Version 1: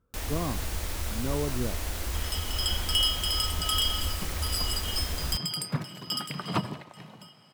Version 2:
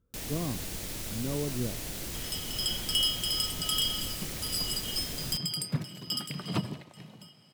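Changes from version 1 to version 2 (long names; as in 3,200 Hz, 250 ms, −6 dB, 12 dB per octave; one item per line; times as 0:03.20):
first sound: add low shelf with overshoot 100 Hz −8.5 dB, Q 3
master: add parametric band 1,100 Hz −9 dB 1.8 octaves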